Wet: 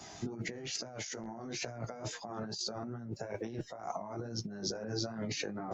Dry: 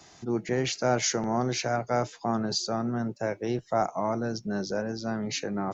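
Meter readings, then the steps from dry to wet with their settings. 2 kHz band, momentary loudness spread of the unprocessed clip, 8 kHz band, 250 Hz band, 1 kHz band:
-9.5 dB, 6 LU, n/a, -11.5 dB, -14.0 dB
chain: bin magnitudes rounded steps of 15 dB; chorus 2.3 Hz, delay 17 ms, depth 3.3 ms; negative-ratio compressor -41 dBFS, ratio -1

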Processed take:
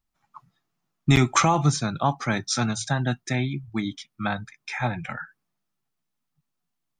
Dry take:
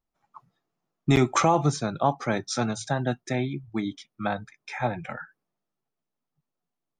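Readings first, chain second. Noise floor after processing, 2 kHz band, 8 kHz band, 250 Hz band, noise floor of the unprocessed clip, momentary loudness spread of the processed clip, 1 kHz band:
-80 dBFS, +4.0 dB, +5.5 dB, +1.5 dB, -85 dBFS, 14 LU, +1.0 dB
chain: bell 490 Hz -10.5 dB 1.6 oct; gain +5.5 dB

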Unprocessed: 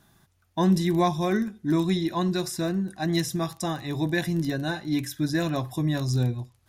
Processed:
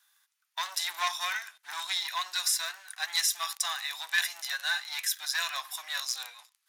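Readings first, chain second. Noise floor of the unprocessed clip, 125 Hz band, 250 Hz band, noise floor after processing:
-67 dBFS, under -40 dB, under -40 dB, -79 dBFS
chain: sample leveller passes 2; Bessel high-pass 1700 Hz, order 6; harmonic-percussive split harmonic +3 dB

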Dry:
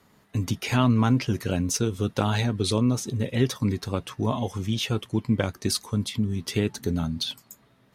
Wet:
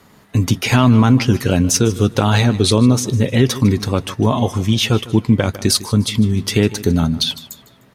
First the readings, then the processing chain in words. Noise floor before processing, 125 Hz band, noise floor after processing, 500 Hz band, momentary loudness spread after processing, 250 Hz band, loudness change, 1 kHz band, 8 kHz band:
-61 dBFS, +10.5 dB, -49 dBFS, +10.0 dB, 6 LU, +10.5 dB, +10.5 dB, +9.0 dB, +11.0 dB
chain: on a send: feedback echo 0.152 s, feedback 35%, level -18 dB; on the sum: maximiser +12 dB; gain -1 dB

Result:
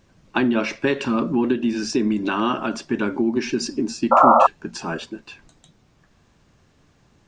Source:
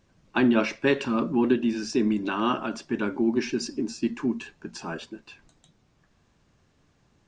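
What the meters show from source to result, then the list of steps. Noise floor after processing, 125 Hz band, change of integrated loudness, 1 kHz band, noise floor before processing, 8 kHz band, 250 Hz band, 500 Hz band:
-59 dBFS, +3.5 dB, +5.5 dB, +14.0 dB, -66 dBFS, +6.0 dB, +3.0 dB, +5.5 dB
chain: compressor 3:1, threshold -24 dBFS, peak gain reduction 6.5 dB; painted sound noise, 4.11–4.47, 510–1400 Hz -19 dBFS; gain +6.5 dB

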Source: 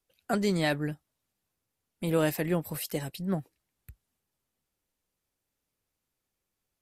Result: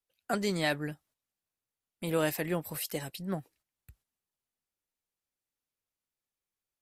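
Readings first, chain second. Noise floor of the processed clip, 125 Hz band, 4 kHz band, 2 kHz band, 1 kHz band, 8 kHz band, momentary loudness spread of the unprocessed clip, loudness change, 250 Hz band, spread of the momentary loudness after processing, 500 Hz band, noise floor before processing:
under -85 dBFS, -5.5 dB, 0.0 dB, -0.5 dB, -1.5 dB, 0.0 dB, 8 LU, -3.0 dB, -4.5 dB, 10 LU, -3.0 dB, -85 dBFS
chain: gate -60 dBFS, range -8 dB; low shelf 460 Hz -6 dB

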